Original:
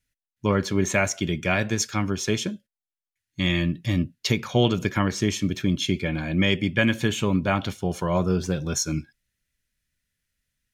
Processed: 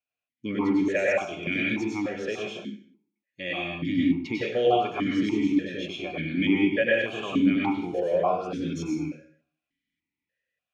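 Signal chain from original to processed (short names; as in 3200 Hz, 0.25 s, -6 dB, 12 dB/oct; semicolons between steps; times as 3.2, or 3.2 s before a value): plate-style reverb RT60 0.6 s, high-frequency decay 0.8×, pre-delay 85 ms, DRR -4.5 dB; vowel sequencer 3.4 Hz; gain +5 dB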